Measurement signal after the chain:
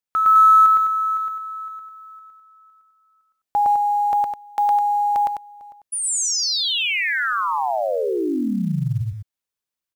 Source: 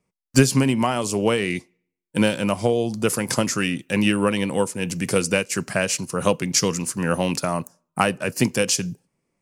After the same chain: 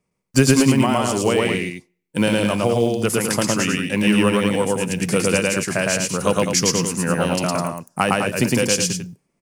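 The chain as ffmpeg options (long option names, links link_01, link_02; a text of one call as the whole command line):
ffmpeg -i in.wav -af "aecho=1:1:110.8|207:0.891|0.447,acrusher=bits=9:mode=log:mix=0:aa=0.000001" out.wav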